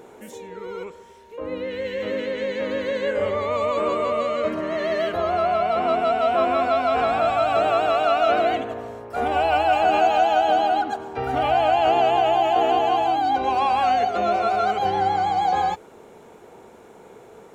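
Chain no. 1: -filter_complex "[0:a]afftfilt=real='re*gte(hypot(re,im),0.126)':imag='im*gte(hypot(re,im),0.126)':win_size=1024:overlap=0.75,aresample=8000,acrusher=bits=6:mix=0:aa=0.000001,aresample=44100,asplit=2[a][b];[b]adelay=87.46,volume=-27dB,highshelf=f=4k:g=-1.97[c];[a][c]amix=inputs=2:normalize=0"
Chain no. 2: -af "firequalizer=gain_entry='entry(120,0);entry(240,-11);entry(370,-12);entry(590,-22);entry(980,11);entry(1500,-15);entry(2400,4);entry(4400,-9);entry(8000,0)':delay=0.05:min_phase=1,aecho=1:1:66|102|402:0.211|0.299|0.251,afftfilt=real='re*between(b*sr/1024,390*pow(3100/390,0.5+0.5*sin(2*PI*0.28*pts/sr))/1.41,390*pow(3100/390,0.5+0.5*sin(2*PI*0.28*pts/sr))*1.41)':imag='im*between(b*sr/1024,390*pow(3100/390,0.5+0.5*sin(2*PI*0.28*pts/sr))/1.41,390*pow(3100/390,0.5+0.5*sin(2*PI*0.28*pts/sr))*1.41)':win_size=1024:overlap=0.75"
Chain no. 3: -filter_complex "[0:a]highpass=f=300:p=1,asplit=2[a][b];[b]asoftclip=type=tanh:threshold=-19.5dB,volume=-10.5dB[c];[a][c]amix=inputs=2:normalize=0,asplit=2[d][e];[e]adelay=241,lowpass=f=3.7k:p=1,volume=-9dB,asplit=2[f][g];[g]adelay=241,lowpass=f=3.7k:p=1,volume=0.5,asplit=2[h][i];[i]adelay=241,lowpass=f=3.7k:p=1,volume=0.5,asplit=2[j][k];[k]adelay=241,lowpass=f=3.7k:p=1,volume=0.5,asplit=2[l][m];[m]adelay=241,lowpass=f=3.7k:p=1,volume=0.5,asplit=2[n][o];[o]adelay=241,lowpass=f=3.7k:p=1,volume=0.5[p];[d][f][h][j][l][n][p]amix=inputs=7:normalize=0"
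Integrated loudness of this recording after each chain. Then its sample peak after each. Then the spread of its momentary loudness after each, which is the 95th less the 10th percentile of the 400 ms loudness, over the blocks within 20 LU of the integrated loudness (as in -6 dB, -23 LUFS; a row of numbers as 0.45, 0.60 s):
-21.5, -31.0, -20.0 LUFS; -8.5, -13.5, -7.0 dBFS; 11, 20, 13 LU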